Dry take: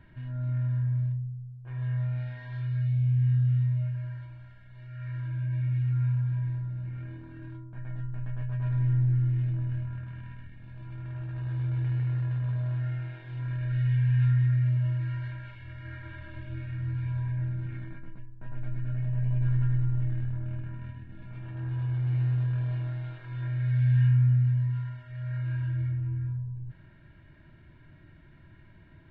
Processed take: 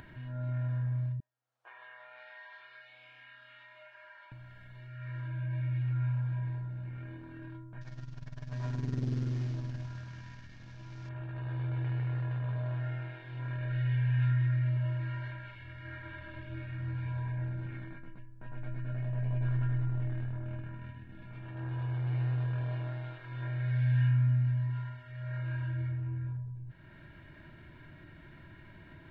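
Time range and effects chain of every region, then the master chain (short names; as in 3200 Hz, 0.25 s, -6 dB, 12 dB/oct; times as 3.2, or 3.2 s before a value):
1.2–4.32 ladder high-pass 600 Hz, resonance 20% + air absorption 78 m
7.81–11.09 CVSD 32 kbps + core saturation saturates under 110 Hz
whole clip: low shelf 190 Hz -7.5 dB; upward compressor, threshold -44 dBFS; dynamic EQ 660 Hz, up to +5 dB, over -51 dBFS, Q 0.72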